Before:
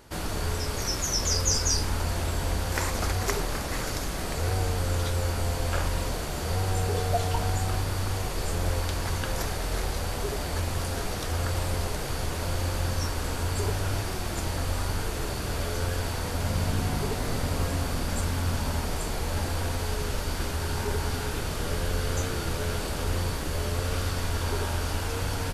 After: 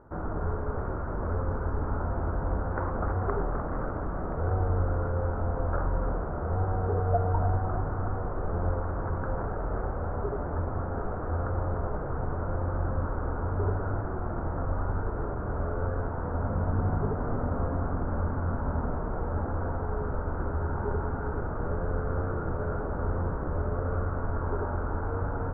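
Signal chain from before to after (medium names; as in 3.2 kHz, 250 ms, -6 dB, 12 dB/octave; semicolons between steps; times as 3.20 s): elliptic low-pass 1.4 kHz, stop band 60 dB; on a send: two-band feedback delay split 490 Hz, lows 98 ms, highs 302 ms, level -10 dB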